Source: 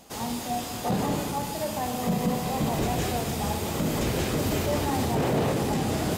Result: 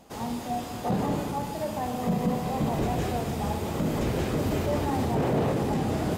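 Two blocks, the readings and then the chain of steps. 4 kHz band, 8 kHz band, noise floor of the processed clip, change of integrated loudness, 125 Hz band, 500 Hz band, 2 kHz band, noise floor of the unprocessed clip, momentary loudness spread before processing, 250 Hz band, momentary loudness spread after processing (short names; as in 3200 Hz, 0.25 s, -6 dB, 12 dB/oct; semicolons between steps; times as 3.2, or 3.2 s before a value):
-6.5 dB, -8.0 dB, -36 dBFS, -1.0 dB, 0.0 dB, -0.5 dB, -3.5 dB, -35 dBFS, 5 LU, 0.0 dB, 6 LU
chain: high shelf 2400 Hz -9 dB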